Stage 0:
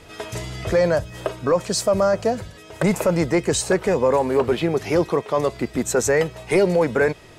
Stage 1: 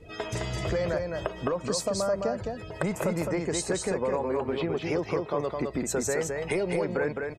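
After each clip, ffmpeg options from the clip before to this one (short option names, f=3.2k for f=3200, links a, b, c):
-af "afftdn=nr=19:nf=-42,acompressor=threshold=-28dB:ratio=4,aecho=1:1:212:0.631"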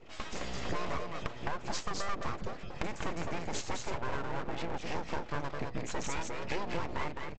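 -af "asubboost=boost=8:cutoff=73,aresample=16000,aeval=exprs='abs(val(0))':c=same,aresample=44100,volume=-4dB"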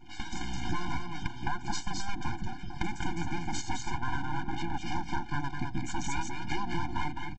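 -af "afftfilt=real='re*eq(mod(floor(b*sr/1024/350),2),0)':imag='im*eq(mod(floor(b*sr/1024/350),2),0)':win_size=1024:overlap=0.75,volume=5dB"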